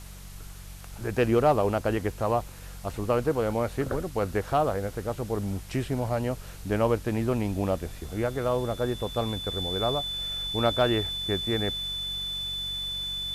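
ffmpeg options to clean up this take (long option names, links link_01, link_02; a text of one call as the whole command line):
ffmpeg -i in.wav -af "adeclick=threshold=4,bandreject=frequency=46.9:width_type=h:width=4,bandreject=frequency=93.8:width_type=h:width=4,bandreject=frequency=140.7:width_type=h:width=4,bandreject=frequency=187.6:width_type=h:width=4,bandreject=frequency=3500:width=30,afwtdn=0.0035" out.wav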